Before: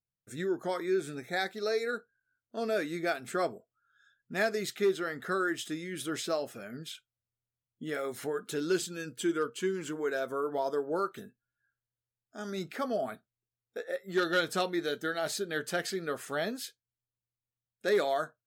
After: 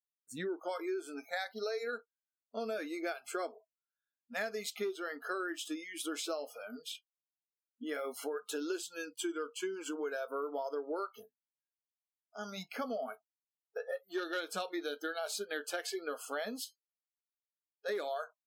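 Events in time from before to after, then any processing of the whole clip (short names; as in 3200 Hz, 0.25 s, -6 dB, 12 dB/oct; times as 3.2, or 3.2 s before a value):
16.64–17.89 resonator 260 Hz, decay 0.2 s
whole clip: spectral noise reduction 30 dB; compressor 6:1, threshold -34 dBFS; HPF 180 Hz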